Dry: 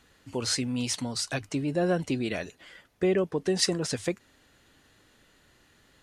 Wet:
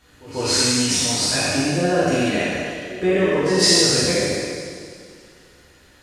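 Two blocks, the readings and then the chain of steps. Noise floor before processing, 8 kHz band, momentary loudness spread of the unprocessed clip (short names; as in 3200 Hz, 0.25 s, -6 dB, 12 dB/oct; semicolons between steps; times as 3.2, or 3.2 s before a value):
-63 dBFS, +13.5 dB, 9 LU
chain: spectral trails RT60 1.91 s; reverse echo 0.14 s -18 dB; two-slope reverb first 0.84 s, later 3.1 s, from -18 dB, DRR -5.5 dB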